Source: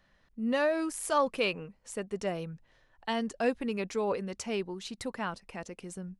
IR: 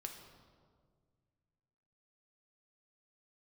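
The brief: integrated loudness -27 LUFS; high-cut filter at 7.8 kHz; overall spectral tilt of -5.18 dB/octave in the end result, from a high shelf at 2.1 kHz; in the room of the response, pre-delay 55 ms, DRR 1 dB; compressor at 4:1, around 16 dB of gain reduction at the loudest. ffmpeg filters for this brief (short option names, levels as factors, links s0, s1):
-filter_complex "[0:a]lowpass=7800,highshelf=f=2100:g=-6,acompressor=threshold=0.00631:ratio=4,asplit=2[s0][s1];[1:a]atrim=start_sample=2205,adelay=55[s2];[s1][s2]afir=irnorm=-1:irlink=0,volume=1.26[s3];[s0][s3]amix=inputs=2:normalize=0,volume=7.08"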